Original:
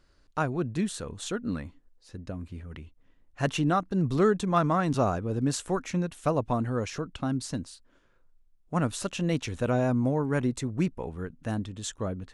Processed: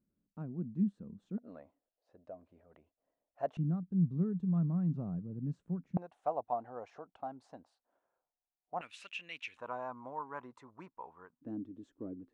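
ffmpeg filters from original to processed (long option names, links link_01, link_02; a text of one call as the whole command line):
ffmpeg -i in.wav -af "asetnsamples=nb_out_samples=441:pad=0,asendcmd='1.38 bandpass f 650;3.57 bandpass f 170;5.97 bandpass f 750;8.81 bandpass f 2500;9.57 bandpass f 1000;11.41 bandpass f 300',bandpass=frequency=200:width_type=q:width=5.1:csg=0" out.wav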